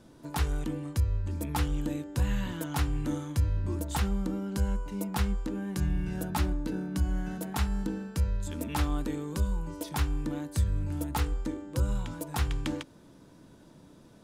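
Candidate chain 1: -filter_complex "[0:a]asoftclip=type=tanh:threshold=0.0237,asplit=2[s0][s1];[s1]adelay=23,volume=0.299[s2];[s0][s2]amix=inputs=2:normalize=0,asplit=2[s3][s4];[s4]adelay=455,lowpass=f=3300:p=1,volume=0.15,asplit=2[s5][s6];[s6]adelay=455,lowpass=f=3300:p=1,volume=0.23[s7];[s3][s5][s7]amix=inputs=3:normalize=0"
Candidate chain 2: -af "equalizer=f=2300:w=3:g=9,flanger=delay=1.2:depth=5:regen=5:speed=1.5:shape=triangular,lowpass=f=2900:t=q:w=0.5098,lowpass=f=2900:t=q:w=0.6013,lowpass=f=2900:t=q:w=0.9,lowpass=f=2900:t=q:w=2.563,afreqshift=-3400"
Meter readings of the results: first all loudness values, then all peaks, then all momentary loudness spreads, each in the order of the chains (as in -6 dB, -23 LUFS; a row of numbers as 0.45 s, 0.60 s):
-38.0 LUFS, -29.5 LUFS; -29.0 dBFS, -18.0 dBFS; 3 LU, 6 LU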